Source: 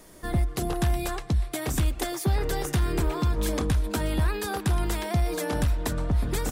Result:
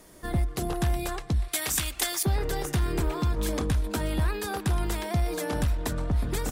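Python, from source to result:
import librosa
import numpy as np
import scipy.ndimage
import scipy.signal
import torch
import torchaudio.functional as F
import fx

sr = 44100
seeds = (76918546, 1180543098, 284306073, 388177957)

y = fx.cheby_harmonics(x, sr, harmonics=(6,), levels_db=(-33,), full_scale_db=-15.0)
y = fx.tilt_shelf(y, sr, db=-9.5, hz=930.0, at=(1.48, 2.23))
y = y * 10.0 ** (-1.5 / 20.0)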